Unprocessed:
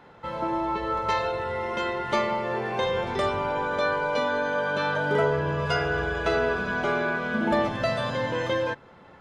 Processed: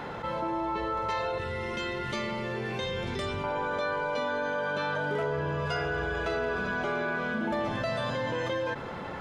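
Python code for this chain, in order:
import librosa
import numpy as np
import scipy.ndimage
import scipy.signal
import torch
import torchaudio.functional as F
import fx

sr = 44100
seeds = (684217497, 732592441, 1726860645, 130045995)

y = fx.peak_eq(x, sr, hz=810.0, db=-13.0, octaves=1.9, at=(1.38, 3.44))
y = np.clip(y, -10.0 ** (-15.5 / 20.0), 10.0 ** (-15.5 / 20.0))
y = fx.env_flatten(y, sr, amount_pct=70)
y = y * librosa.db_to_amplitude(-8.0)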